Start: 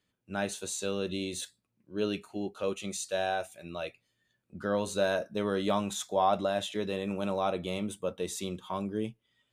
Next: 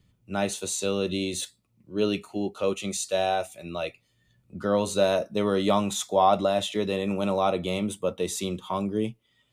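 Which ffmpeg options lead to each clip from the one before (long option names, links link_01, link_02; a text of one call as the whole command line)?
ffmpeg -i in.wav -filter_complex "[0:a]bandreject=frequency=1600:width=6,acrossover=split=150|3200[link_01][link_02][link_03];[link_01]acompressor=mode=upward:threshold=-56dB:ratio=2.5[link_04];[link_04][link_02][link_03]amix=inputs=3:normalize=0,volume=6dB" out.wav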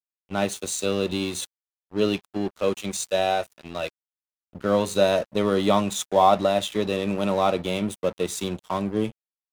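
ffmpeg -i in.wav -af "aeval=exprs='sgn(val(0))*max(abs(val(0))-0.0106,0)':channel_layout=same,volume=3.5dB" out.wav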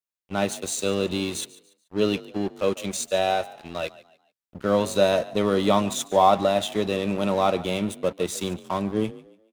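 ffmpeg -i in.wav -filter_complex "[0:a]asplit=4[link_01][link_02][link_03][link_04];[link_02]adelay=144,afreqshift=39,volume=-19dB[link_05];[link_03]adelay=288,afreqshift=78,volume=-28.4dB[link_06];[link_04]adelay=432,afreqshift=117,volume=-37.7dB[link_07];[link_01][link_05][link_06][link_07]amix=inputs=4:normalize=0" out.wav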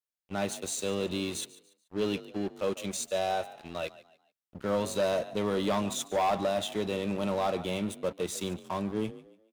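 ffmpeg -i in.wav -af "asoftclip=type=tanh:threshold=-17.5dB,volume=-4.5dB" out.wav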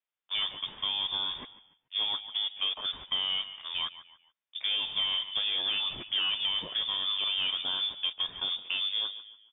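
ffmpeg -i in.wav -filter_complex "[0:a]lowpass=frequency=3100:width_type=q:width=0.5098,lowpass=frequency=3100:width_type=q:width=0.6013,lowpass=frequency=3100:width_type=q:width=0.9,lowpass=frequency=3100:width_type=q:width=2.563,afreqshift=-3700,acrossover=split=1200|2500[link_01][link_02][link_03];[link_01]acompressor=threshold=-47dB:ratio=4[link_04];[link_02]acompressor=threshold=-50dB:ratio=4[link_05];[link_03]acompressor=threshold=-35dB:ratio=4[link_06];[link_04][link_05][link_06]amix=inputs=3:normalize=0,volume=5dB" out.wav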